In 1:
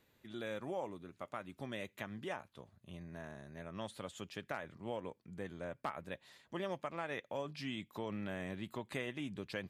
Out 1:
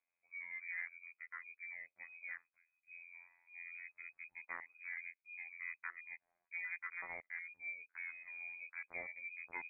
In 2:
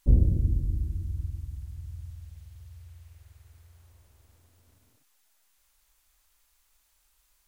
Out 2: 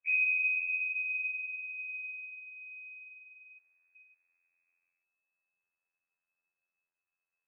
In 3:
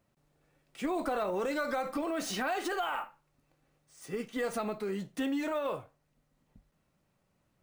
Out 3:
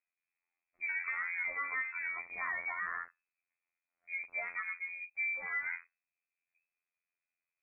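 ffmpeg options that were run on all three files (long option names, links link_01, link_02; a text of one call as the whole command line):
ffmpeg -i in.wav -af "afftfilt=real='hypot(re,im)*cos(PI*b)':imag='0':win_size=2048:overlap=0.75,aresample=16000,asoftclip=type=tanh:threshold=-24dB,aresample=44100,afwtdn=0.00562,lowpass=frequency=2200:width_type=q:width=0.5098,lowpass=frequency=2200:width_type=q:width=0.6013,lowpass=frequency=2200:width_type=q:width=0.9,lowpass=frequency=2200:width_type=q:width=2.563,afreqshift=-2600" out.wav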